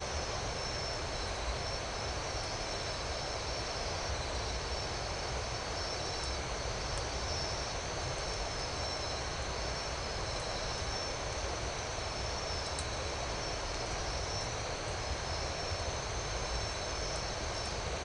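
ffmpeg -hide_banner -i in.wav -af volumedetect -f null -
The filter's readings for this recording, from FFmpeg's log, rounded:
mean_volume: -37.0 dB
max_volume: -20.2 dB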